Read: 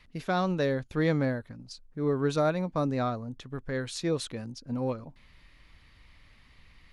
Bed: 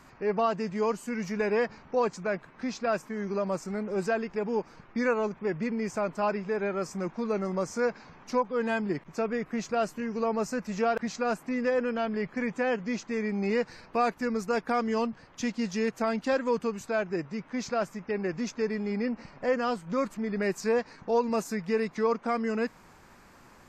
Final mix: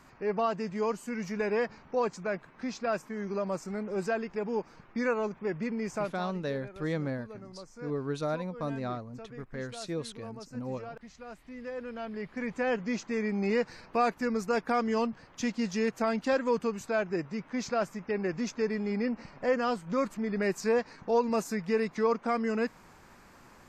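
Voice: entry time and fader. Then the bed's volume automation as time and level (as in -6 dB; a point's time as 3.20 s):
5.85 s, -6.0 dB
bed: 6.03 s -2.5 dB
6.25 s -17 dB
11.27 s -17 dB
12.76 s -0.5 dB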